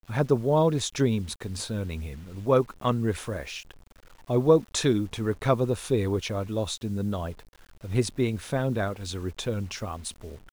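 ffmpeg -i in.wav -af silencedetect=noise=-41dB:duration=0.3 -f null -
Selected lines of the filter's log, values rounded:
silence_start: 3.71
silence_end: 4.29 | silence_duration: 0.58
silence_start: 7.40
silence_end: 7.84 | silence_duration: 0.44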